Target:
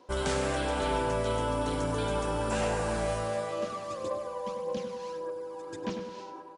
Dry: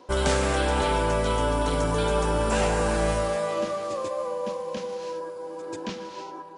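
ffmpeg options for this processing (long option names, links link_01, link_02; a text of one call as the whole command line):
ffmpeg -i in.wav -filter_complex "[0:a]asplit=3[link_01][link_02][link_03];[link_01]afade=type=out:start_time=3.68:duration=0.02[link_04];[link_02]aphaser=in_gain=1:out_gain=1:delay=1.2:decay=0.5:speed=1.7:type=triangular,afade=type=in:start_time=3.68:duration=0.02,afade=type=out:start_time=5.96:duration=0.02[link_05];[link_03]afade=type=in:start_time=5.96:duration=0.02[link_06];[link_04][link_05][link_06]amix=inputs=3:normalize=0,asplit=2[link_07][link_08];[link_08]adelay=99,lowpass=frequency=2000:poles=1,volume=-6.5dB,asplit=2[link_09][link_10];[link_10]adelay=99,lowpass=frequency=2000:poles=1,volume=0.43,asplit=2[link_11][link_12];[link_12]adelay=99,lowpass=frequency=2000:poles=1,volume=0.43,asplit=2[link_13][link_14];[link_14]adelay=99,lowpass=frequency=2000:poles=1,volume=0.43,asplit=2[link_15][link_16];[link_16]adelay=99,lowpass=frequency=2000:poles=1,volume=0.43[link_17];[link_07][link_09][link_11][link_13][link_15][link_17]amix=inputs=6:normalize=0,volume=-6.5dB" out.wav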